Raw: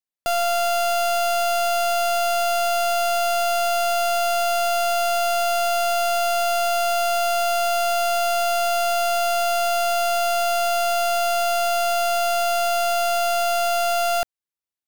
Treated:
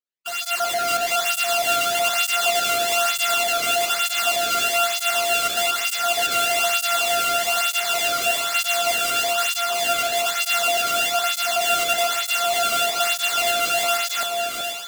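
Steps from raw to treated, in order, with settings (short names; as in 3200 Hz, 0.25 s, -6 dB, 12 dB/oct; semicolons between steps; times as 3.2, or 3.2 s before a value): random spectral dropouts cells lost 39%; bell 3000 Hz +7.5 dB 0.93 oct; sample-rate reducer 11000 Hz, jitter 20%; bell 700 Hz -4.5 dB 0.85 oct; on a send: echo with dull and thin repeats by turns 0.376 s, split 1800 Hz, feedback 80%, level -4.5 dB; on the sum: AGC gain up to 9 dB; tape flanging out of phase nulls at 1.1 Hz, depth 1.2 ms; gain -2.5 dB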